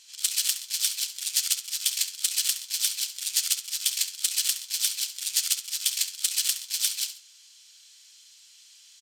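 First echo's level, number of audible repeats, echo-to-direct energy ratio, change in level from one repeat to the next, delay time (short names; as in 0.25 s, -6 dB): -12.0 dB, 2, -11.5 dB, -9.5 dB, 68 ms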